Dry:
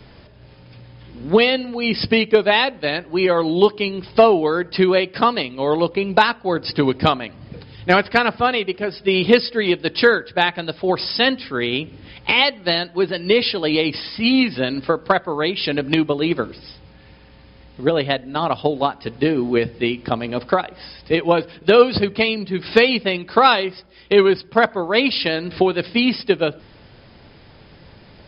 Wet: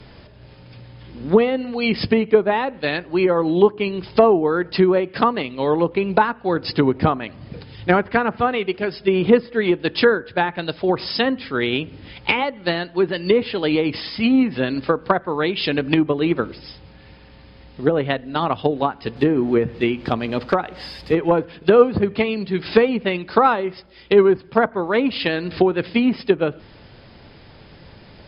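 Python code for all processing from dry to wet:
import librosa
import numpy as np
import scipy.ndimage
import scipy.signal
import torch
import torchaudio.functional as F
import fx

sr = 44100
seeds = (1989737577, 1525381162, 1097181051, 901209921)

y = fx.chain(x, sr, fx.law_mismatch(coded='mu'),
    fx.clip_hard(threshold_db=-6.0), at=(19.16, 21.42))
y = fx.env_lowpass_down(y, sr, base_hz=1200.0, full_db=-12.5)
y = fx.dynamic_eq(y, sr, hz=640.0, q=2.4, threshold_db=-28.0, ratio=4.0, max_db=-4)
y = y * 10.0 ** (1.0 / 20.0)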